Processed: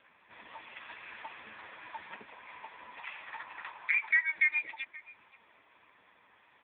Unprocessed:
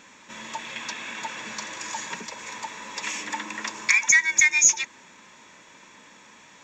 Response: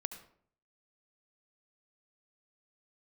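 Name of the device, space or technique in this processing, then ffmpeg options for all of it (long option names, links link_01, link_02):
satellite phone: -filter_complex "[0:a]asettb=1/sr,asplit=3[link_01][link_02][link_03];[link_01]atrim=end=2.994[link_04];[link_02]atrim=start=2.99:end=4.34,asetpts=PTS-STARTPTS,afade=type=in:duration=0.004:curve=qsin,afade=type=out:start_time=1.346:duration=0.004:curve=qsin,lowshelf=frequency=460:width_type=q:width=1.5:gain=-8.5[link_05];[link_03]atrim=start=4.336[link_06];[link_04][link_05]acrossfade=duration=0.004:curve1=hsin:curve2=qsin[link_07];[link_07][link_06]acrossfade=duration=0.004:curve1=qsin:curve2=hsin,highpass=310,lowpass=3200,aecho=1:1:524:0.0944,volume=-6.5dB" -ar 8000 -c:a libopencore_amrnb -b:a 5900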